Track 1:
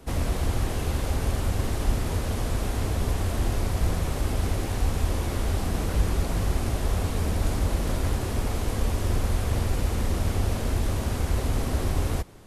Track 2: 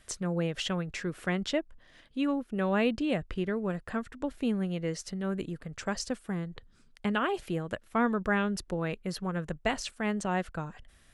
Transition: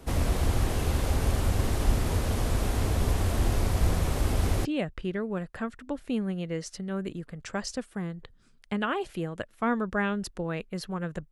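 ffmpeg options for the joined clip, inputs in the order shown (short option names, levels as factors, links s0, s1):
-filter_complex "[0:a]apad=whole_dur=11.31,atrim=end=11.31,atrim=end=4.652[s0];[1:a]atrim=start=2.978:end=9.64[s1];[s0][s1]acrossfade=d=0.004:c1=hsin:c2=hsin"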